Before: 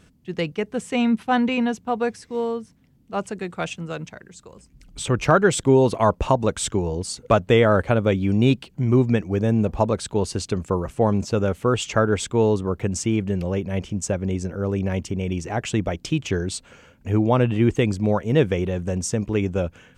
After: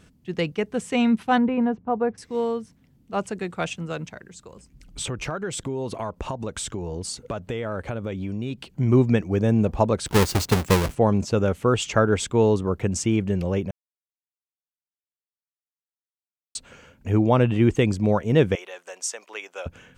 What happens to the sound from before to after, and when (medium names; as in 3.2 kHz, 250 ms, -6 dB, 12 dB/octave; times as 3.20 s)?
1.38–2.18 s: low-pass 1.2 kHz
5.05–8.66 s: compression 5:1, threshold -27 dBFS
10.06–10.95 s: square wave that keeps the level
13.71–16.55 s: mute
18.55–19.66 s: Bessel high-pass 950 Hz, order 4